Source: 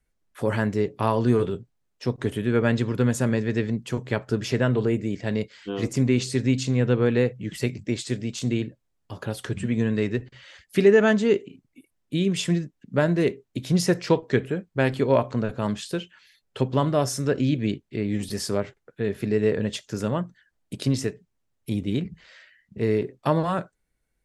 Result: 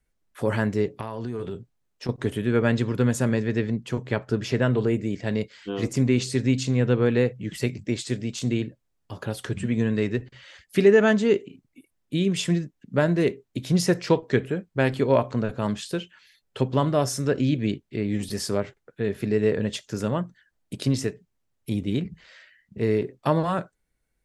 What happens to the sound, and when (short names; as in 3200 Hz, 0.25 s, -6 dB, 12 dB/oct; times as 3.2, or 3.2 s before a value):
0.91–2.09 compressor 8:1, threshold -27 dBFS
3.47–4.62 high shelf 7000 Hz -7 dB